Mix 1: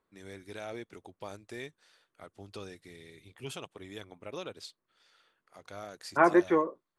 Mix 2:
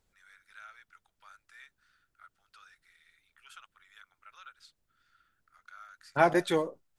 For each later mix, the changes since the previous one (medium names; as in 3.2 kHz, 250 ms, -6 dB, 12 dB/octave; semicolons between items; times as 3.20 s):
first voice: add ladder high-pass 1.3 kHz, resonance 75%; second voice: remove cabinet simulation 200–2200 Hz, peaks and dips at 350 Hz +6 dB, 780 Hz -4 dB, 1.1 kHz +9 dB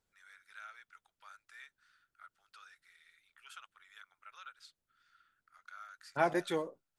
second voice -6.5 dB; master: add bass shelf 72 Hz -8 dB